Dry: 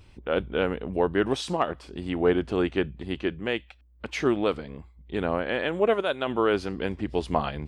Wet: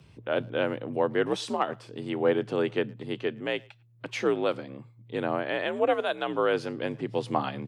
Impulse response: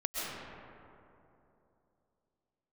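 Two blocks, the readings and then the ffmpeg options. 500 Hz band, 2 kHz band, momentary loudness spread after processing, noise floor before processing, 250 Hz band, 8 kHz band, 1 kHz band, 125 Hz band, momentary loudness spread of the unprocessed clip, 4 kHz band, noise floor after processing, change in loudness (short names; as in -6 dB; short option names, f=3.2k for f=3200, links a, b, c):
-1.5 dB, -1.5 dB, 9 LU, -55 dBFS, -4.0 dB, -2.0 dB, -1.0 dB, -4.0 dB, 9 LU, -2.0 dB, -56 dBFS, -2.0 dB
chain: -filter_complex "[0:a]asplit=2[a][b];[b]adelay=110,highpass=300,lowpass=3.4k,asoftclip=type=hard:threshold=-17.5dB,volume=-25dB[c];[a][c]amix=inputs=2:normalize=0,afreqshift=57,volume=-2dB"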